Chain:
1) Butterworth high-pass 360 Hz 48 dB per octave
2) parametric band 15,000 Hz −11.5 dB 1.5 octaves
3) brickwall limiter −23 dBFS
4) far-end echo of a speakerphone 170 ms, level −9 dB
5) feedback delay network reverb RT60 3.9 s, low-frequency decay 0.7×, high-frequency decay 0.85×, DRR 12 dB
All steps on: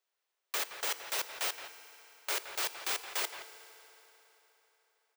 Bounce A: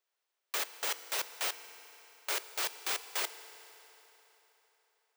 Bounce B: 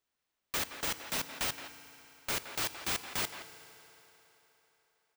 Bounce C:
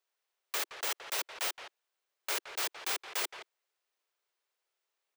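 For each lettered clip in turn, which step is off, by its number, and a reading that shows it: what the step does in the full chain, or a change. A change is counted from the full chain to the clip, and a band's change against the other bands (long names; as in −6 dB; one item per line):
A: 4, echo-to-direct ratio −10.0 dB to −12.0 dB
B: 1, 250 Hz band +11.0 dB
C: 5, echo-to-direct ratio −10.0 dB to −14.5 dB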